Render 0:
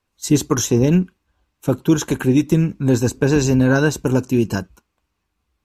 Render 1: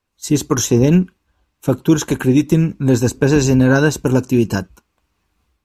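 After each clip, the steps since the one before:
automatic gain control gain up to 10 dB
level −1 dB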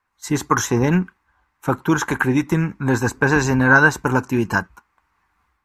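flat-topped bell 1,300 Hz +13.5 dB
level −5.5 dB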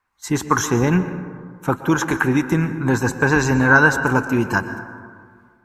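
dense smooth reverb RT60 1.9 s, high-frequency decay 0.35×, pre-delay 105 ms, DRR 10.5 dB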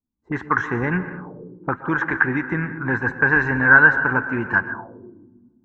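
envelope-controlled low-pass 250–1,800 Hz up, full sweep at −19 dBFS
level −6.5 dB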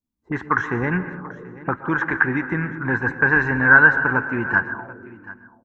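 single-tap delay 735 ms −19 dB

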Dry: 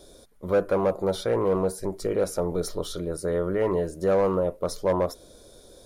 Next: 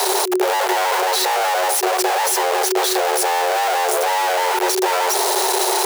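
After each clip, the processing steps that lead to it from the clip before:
sign of each sample alone
frequency shifter +360 Hz
level +8 dB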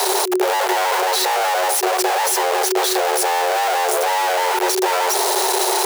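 no processing that can be heard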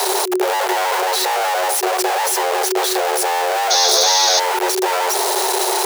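sound drawn into the spectrogram noise, 0:03.70–0:04.40, 3,300–6,700 Hz −16 dBFS

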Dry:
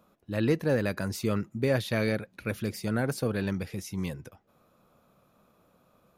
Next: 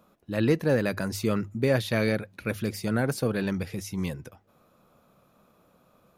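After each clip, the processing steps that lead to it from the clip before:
mains-hum notches 50/100 Hz
level +2.5 dB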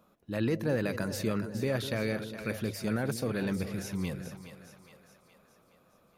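brickwall limiter −16.5 dBFS, peak gain reduction 5.5 dB
echo with a time of its own for lows and highs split 530 Hz, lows 197 ms, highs 417 ms, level −10 dB
level −3.5 dB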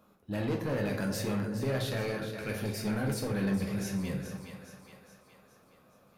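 soft clipping −29 dBFS, distortion −11 dB
dense smooth reverb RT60 0.56 s, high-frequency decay 0.7×, DRR 1 dB

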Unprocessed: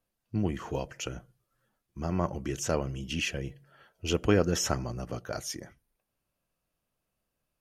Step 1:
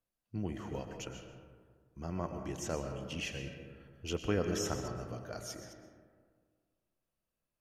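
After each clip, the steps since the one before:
delay that plays each chunk backwards 122 ms, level −13 dB
convolution reverb RT60 1.8 s, pre-delay 85 ms, DRR 6 dB
level −8.5 dB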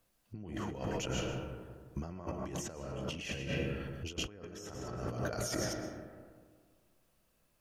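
compressor whose output falls as the input rises −48 dBFS, ratio −1
level +7.5 dB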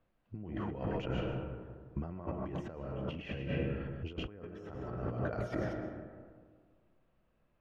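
high-frequency loss of the air 490 metres
level +2 dB

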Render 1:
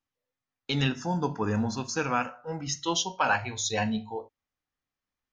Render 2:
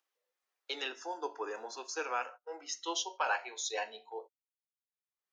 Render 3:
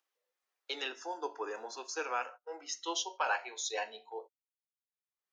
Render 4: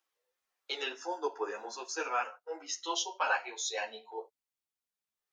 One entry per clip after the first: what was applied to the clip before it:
noise gate −40 dBFS, range −31 dB; Butterworth high-pass 350 Hz 48 dB per octave; upward compression, threshold −50 dBFS; level −7 dB
no processing that can be heard
string-ensemble chorus; level +5 dB

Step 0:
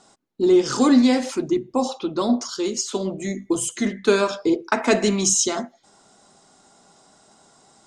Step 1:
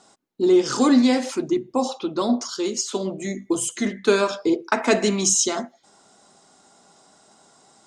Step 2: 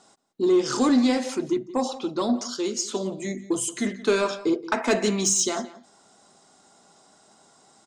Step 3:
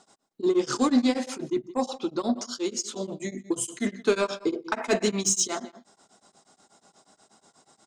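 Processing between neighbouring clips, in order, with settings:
low-shelf EQ 84 Hz −10.5 dB
soft clipping −9.5 dBFS, distortion −21 dB; slap from a distant wall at 30 metres, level −17 dB; level −2 dB
tremolo along a rectified sine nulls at 8.3 Hz

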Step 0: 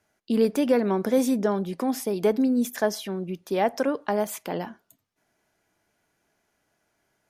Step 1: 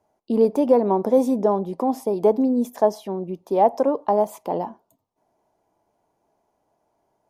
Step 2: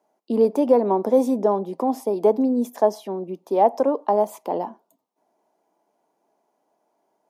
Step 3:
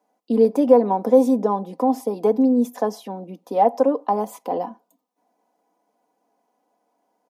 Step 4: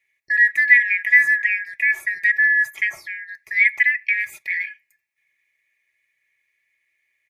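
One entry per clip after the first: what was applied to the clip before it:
drawn EQ curve 180 Hz 0 dB, 960 Hz +9 dB, 1,500 Hz −12 dB, 5,000 Hz −8 dB
high-pass filter 200 Hz 24 dB per octave
comb filter 4 ms, depth 72%; level −1 dB
band-splitting scrambler in four parts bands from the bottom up 4123

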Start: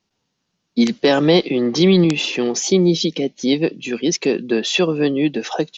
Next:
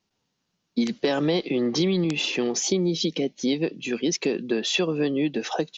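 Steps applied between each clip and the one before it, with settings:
downward compressor, threshold −16 dBFS, peak gain reduction 7.5 dB
level −3.5 dB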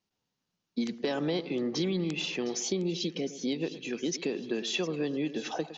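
echo with a time of its own for lows and highs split 1,700 Hz, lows 110 ms, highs 710 ms, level −14 dB
level −7.5 dB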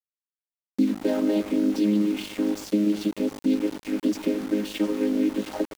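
channel vocoder with a chord as carrier major triad, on G#3
centre clipping without the shift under −43 dBFS
level +8.5 dB

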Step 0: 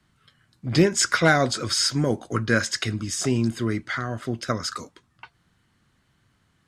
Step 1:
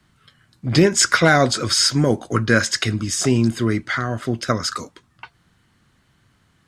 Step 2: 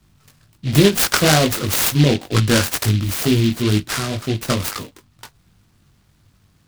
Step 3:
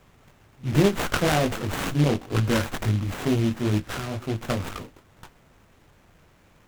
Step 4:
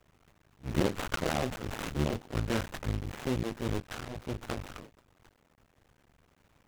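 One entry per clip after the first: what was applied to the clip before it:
boost into a limiter +7.5 dB; level −2 dB
low-shelf EQ 120 Hz +10 dB; chorus effect 2.1 Hz, delay 19 ms, depth 2.4 ms; short delay modulated by noise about 3,000 Hz, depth 0.13 ms; level +2.5 dB
echo ahead of the sound 65 ms −22 dB; background noise pink −50 dBFS; windowed peak hold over 9 samples; level −6 dB
sub-harmonics by changed cycles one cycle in 2, muted; highs frequency-modulated by the lows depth 0.24 ms; level −6.5 dB

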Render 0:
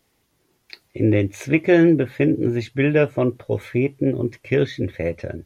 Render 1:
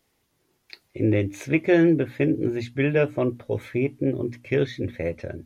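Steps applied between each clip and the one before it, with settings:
mains-hum notches 60/120/180/240/300 Hz
level −3.5 dB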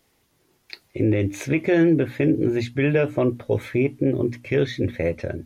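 brickwall limiter −15.5 dBFS, peak gain reduction 7 dB
level +5 dB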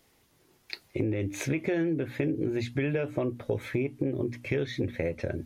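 downward compressor, threshold −26 dBFS, peak gain reduction 11.5 dB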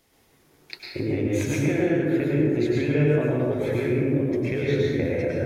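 dense smooth reverb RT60 1.9 s, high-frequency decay 0.45×, pre-delay 90 ms, DRR −5 dB

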